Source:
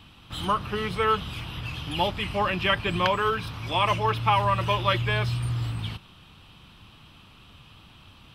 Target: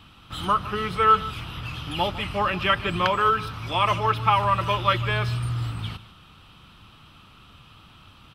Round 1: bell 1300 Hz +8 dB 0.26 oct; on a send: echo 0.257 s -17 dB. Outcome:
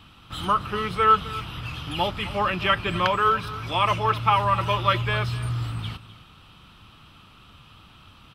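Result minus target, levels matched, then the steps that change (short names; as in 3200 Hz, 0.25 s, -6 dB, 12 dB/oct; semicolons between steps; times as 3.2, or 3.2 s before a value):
echo 0.106 s late
change: echo 0.151 s -17 dB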